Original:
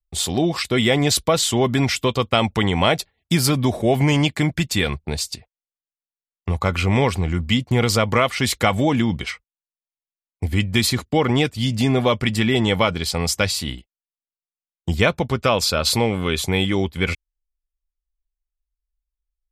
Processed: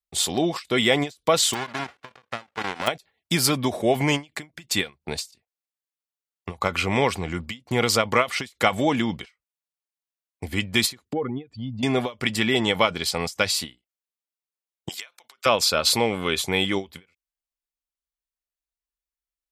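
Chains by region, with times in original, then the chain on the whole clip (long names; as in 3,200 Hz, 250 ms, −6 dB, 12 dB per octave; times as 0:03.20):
0:01.53–0:02.86: spectral envelope flattened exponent 0.1 + low-pass filter 1,800 Hz + output level in coarse steps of 13 dB
0:11.13–0:11.83: expanding power law on the bin magnitudes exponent 1.9 + high-frequency loss of the air 190 metres + downward compressor 2.5 to 1, threshold −21 dBFS
0:14.89–0:15.46: high-pass filter 1,100 Hz + high-shelf EQ 3,700 Hz +5.5 dB
whole clip: high-pass filter 340 Hz 6 dB per octave; every ending faded ahead of time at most 280 dB per second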